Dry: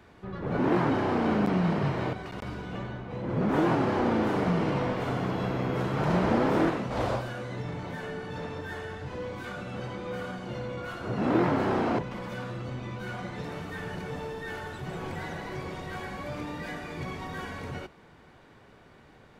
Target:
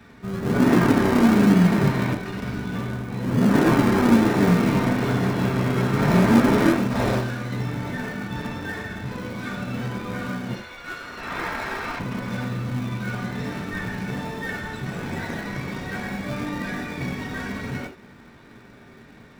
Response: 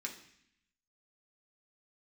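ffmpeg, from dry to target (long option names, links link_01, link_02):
-filter_complex "[0:a]asettb=1/sr,asplit=3[link_01][link_02][link_03];[link_01]atrim=end=10.554[link_04];[link_02]atrim=start=10.55:end=12,asetpts=PTS-STARTPTS,afade=type=in:duration=0.004:curve=qsin,afade=type=out:start_time=1.446:duration=0.004:curve=qsin,highpass=1100[link_05];[link_03]atrim=start=11.996[link_06];[link_04][link_05]acrossfade=duration=0.004:curve1=hsin:curve2=qsin[link_07];[link_07][link_06]acrossfade=duration=0.004:curve1=qsin:curve2=hsin[link_08];[1:a]atrim=start_sample=2205,atrim=end_sample=4410[link_09];[link_08][link_09]afir=irnorm=-1:irlink=0,asplit=2[link_10][link_11];[link_11]acrusher=samples=40:mix=1:aa=0.000001:lfo=1:lforange=24:lforate=1.1,volume=-7dB[link_12];[link_10][link_12]amix=inputs=2:normalize=0,volume=7dB"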